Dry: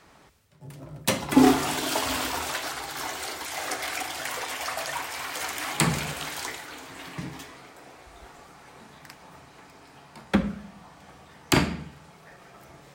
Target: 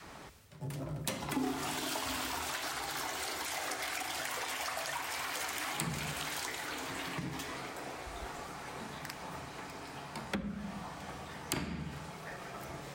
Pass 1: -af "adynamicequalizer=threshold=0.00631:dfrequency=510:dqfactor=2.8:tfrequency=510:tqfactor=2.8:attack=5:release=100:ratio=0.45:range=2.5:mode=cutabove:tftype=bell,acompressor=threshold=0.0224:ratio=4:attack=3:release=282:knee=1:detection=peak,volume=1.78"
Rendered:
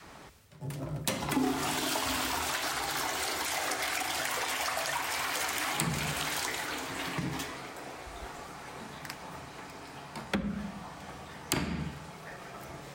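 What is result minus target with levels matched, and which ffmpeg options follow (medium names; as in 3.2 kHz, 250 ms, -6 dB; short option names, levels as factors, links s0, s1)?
compression: peak gain reduction -5.5 dB
-af "adynamicequalizer=threshold=0.00631:dfrequency=510:dqfactor=2.8:tfrequency=510:tqfactor=2.8:attack=5:release=100:ratio=0.45:range=2.5:mode=cutabove:tftype=bell,acompressor=threshold=0.01:ratio=4:attack=3:release=282:knee=1:detection=peak,volume=1.78"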